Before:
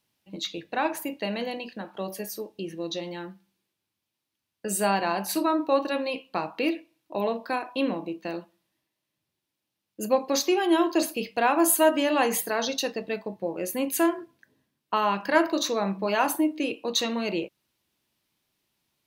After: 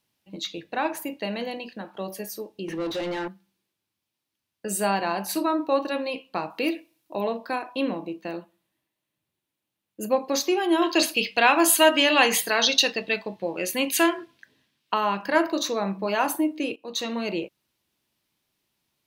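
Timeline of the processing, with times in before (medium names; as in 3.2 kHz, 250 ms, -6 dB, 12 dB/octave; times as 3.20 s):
2.68–3.28 s: overdrive pedal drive 25 dB, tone 1.7 kHz, clips at -21 dBFS
6.50–7.16 s: treble shelf 6.6 kHz +9.5 dB
8.23–10.23 s: peaking EQ 5.2 kHz -5.5 dB 0.57 oct
10.82–14.94 s: peaking EQ 3.2 kHz +12.5 dB 2.2 oct
16.76–17.17 s: fade in linear, from -13.5 dB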